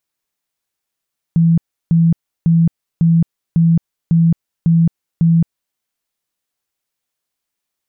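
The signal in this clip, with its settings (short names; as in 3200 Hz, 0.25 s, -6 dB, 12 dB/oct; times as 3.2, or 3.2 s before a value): tone bursts 166 Hz, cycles 36, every 0.55 s, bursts 8, -8 dBFS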